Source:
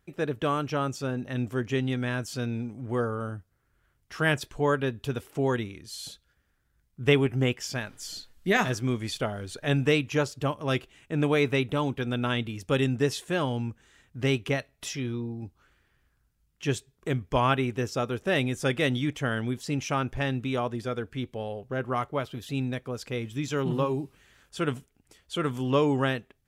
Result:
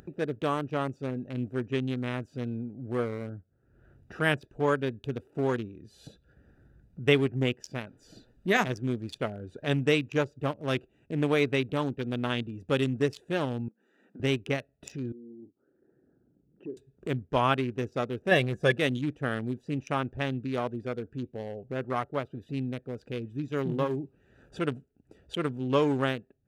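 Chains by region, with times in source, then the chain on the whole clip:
13.68–14.2 Chebyshev high-pass 190 Hz, order 5 + bell 1300 Hz +4 dB 2.2 oct + compressor 3:1, threshold -58 dBFS
15.12–16.77 formant sharpening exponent 1.5 + ladder band-pass 440 Hz, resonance 30% + doubler 38 ms -11 dB
18.31–18.78 comb 1.8 ms, depth 68% + small resonant body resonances 200/310/730/1700 Hz, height 10 dB, ringing for 55 ms
whole clip: Wiener smoothing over 41 samples; upward compressor, threshold -33 dBFS; HPF 140 Hz 6 dB/oct

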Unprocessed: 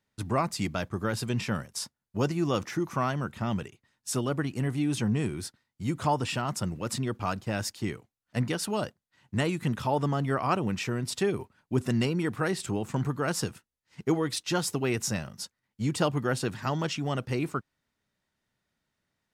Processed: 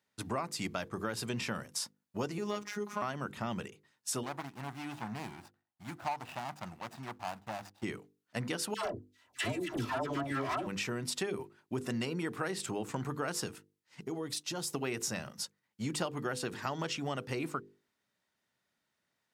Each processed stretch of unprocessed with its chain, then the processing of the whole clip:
2.38–3.02 median filter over 3 samples + hard clip -19 dBFS + robotiser 207 Hz
4.23–7.83 median filter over 41 samples + resonant low shelf 600 Hz -8.5 dB, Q 3
8.74–10.67 minimum comb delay 3 ms + bell 96 Hz +8 dB 1.7 oct + dispersion lows, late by 0.114 s, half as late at 810 Hz
14.01–14.74 bell 1800 Hz -6.5 dB 2 oct + compressor 5:1, threshold -31 dBFS
whole clip: HPF 250 Hz 6 dB/oct; notches 50/100/150/200/250/300/350/400/450/500 Hz; compressor 4:1, threshold -32 dBFS

